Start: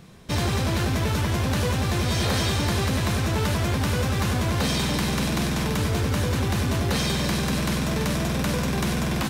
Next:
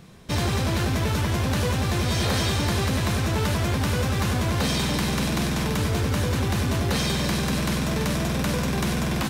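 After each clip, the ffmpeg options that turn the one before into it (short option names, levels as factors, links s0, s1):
-af anull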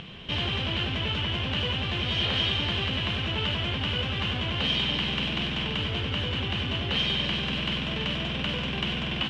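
-af "acompressor=mode=upward:threshold=0.0447:ratio=2.5,lowpass=f=3000:t=q:w=10,volume=0.422"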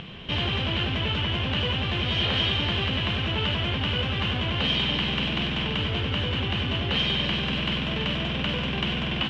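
-af "highshelf=f=5800:g=-8.5,volume=1.41"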